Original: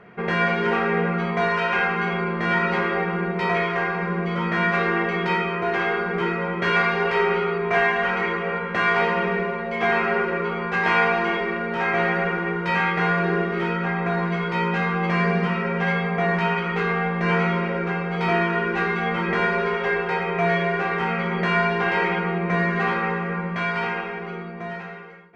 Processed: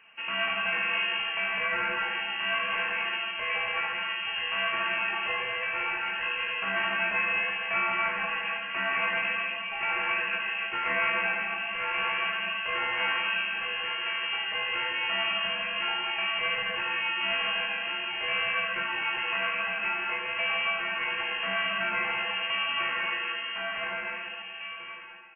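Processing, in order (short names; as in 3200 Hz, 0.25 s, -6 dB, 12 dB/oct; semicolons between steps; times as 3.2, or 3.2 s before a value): inverted band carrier 3000 Hz; loudspeakers at several distances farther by 56 m -4 dB, 73 m -11 dB, 95 m -7 dB; gain -9 dB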